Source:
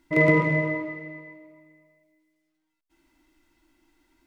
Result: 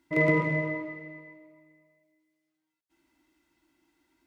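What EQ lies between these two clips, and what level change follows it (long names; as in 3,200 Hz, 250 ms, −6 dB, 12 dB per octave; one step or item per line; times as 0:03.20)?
high-pass filter 72 Hz
−4.5 dB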